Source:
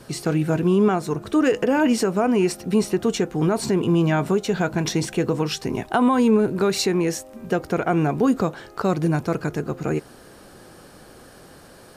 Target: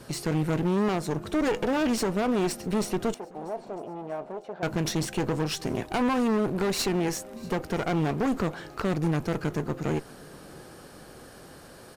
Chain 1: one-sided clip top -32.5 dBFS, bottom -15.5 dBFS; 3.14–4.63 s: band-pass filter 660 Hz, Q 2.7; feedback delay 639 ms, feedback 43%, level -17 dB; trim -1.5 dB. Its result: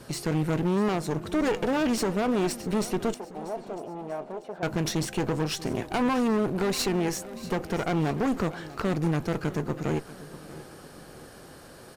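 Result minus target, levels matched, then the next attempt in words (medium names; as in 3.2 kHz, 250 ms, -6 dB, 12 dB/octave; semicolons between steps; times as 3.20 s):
echo-to-direct +6.5 dB
one-sided clip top -32.5 dBFS, bottom -15.5 dBFS; 3.14–4.63 s: band-pass filter 660 Hz, Q 2.7; feedback delay 639 ms, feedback 43%, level -23.5 dB; trim -1.5 dB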